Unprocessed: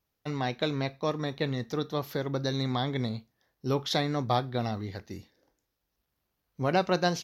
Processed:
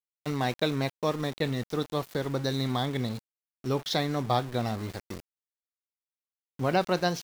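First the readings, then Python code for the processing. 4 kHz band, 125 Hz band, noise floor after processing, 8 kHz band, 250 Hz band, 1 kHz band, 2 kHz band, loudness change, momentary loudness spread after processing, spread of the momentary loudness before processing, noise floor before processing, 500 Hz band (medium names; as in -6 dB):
+0.5 dB, +0.5 dB, under -85 dBFS, +1.5 dB, +0.5 dB, +0.5 dB, +0.5 dB, +0.5 dB, 9 LU, 11 LU, -82 dBFS, +0.5 dB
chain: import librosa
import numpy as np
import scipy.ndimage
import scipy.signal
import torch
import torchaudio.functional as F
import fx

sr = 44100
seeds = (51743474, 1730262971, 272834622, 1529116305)

y = np.where(np.abs(x) >= 10.0 ** (-39.0 / 20.0), x, 0.0)
y = fx.rider(y, sr, range_db=4, speed_s=2.0)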